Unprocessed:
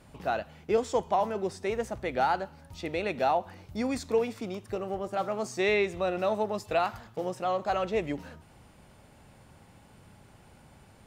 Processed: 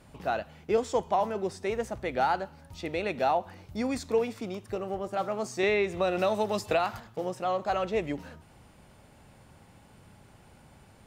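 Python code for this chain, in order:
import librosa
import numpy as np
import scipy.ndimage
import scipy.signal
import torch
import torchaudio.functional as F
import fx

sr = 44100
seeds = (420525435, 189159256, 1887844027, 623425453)

y = fx.band_squash(x, sr, depth_pct=100, at=(5.63, 7.0))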